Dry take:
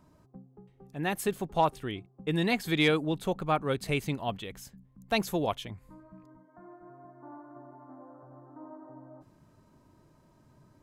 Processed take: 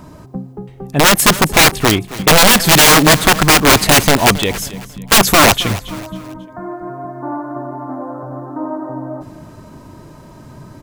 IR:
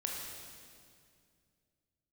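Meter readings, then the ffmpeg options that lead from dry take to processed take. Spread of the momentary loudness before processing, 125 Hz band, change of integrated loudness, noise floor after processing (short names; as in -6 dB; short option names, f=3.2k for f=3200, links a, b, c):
23 LU, +17.5 dB, +20.5 dB, -39 dBFS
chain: -af "apsyclip=22dB,aeval=exprs='(mod(1.58*val(0)+1,2)-1)/1.58':c=same,aecho=1:1:272|544|816:0.141|0.0523|0.0193,volume=1.5dB"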